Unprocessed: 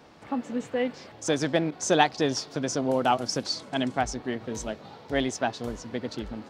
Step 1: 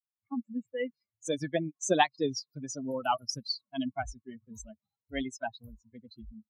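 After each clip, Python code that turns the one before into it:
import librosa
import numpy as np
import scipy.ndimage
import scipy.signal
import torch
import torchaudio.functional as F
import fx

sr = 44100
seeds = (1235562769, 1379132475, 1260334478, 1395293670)

y = fx.bin_expand(x, sr, power=3.0)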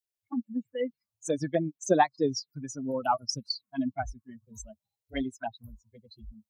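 y = fx.env_phaser(x, sr, low_hz=190.0, high_hz=3000.0, full_db=-29.0)
y = y * 10.0 ** (3.5 / 20.0)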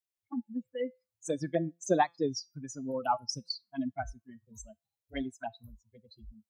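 y = fx.comb_fb(x, sr, f0_hz=170.0, decay_s=0.25, harmonics='all', damping=0.0, mix_pct=40)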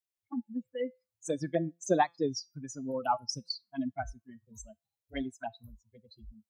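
y = x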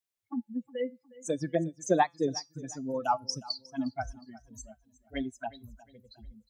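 y = fx.echo_feedback(x, sr, ms=360, feedback_pct=40, wet_db=-20.0)
y = y * 10.0 ** (1.5 / 20.0)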